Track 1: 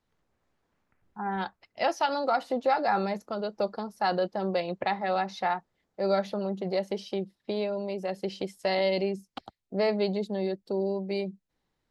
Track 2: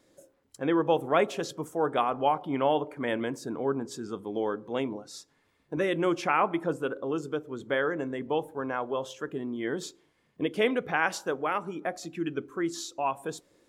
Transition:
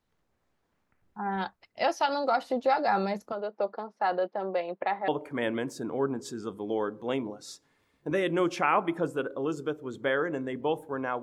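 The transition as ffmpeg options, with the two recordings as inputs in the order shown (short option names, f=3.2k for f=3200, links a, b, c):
-filter_complex "[0:a]asettb=1/sr,asplit=3[a][b][c];[a]atrim=end=3.324[d];[b]atrim=start=3.32:end=5.08,asetpts=PTS-STARTPTS,afade=t=in:d=0.004:c=qsin,afade=t=out:st=1.756:d=0.004:c=qsin,highpass=350,lowpass=2.3k[e];[c]atrim=start=5.076[f];[d][e]acrossfade=d=0.004:c1=hsin:c2=qsin[g];[g][f]acrossfade=d=0.004:c1=qsin:c2=hsin,apad=whole_dur=11.22,atrim=end=11.22,atrim=end=5.082[h];[1:a]atrim=start=2.738:end=8.88[i];[h][i]acrossfade=d=0.004:c1=hsin:c2=hsin"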